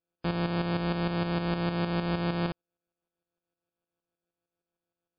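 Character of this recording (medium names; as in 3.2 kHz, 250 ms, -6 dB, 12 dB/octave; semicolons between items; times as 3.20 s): a buzz of ramps at a fixed pitch in blocks of 256 samples; tremolo saw up 6.5 Hz, depth 60%; aliases and images of a low sample rate 2 kHz, jitter 0%; MP3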